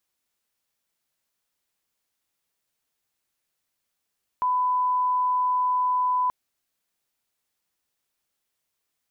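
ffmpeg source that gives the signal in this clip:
-f lavfi -i "sine=f=1000:d=1.88:r=44100,volume=-1.94dB"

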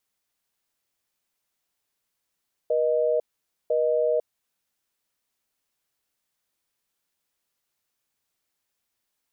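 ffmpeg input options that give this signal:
-f lavfi -i "aevalsrc='0.075*(sin(2*PI*480*t)+sin(2*PI*620*t))*clip(min(mod(t,1),0.5-mod(t,1))/0.005,0,1)':d=1.54:s=44100"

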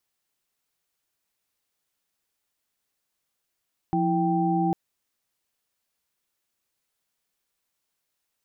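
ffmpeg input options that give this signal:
-f lavfi -i "aevalsrc='0.0562*(sin(2*PI*174.61*t)+sin(2*PI*329.63*t)+sin(2*PI*783.99*t))':d=0.8:s=44100"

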